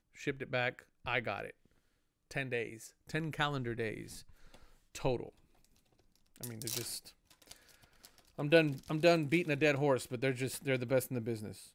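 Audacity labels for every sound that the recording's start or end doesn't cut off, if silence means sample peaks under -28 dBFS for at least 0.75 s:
2.370000	3.880000	sound
5.050000	5.160000	sound
6.430000	6.810000	sound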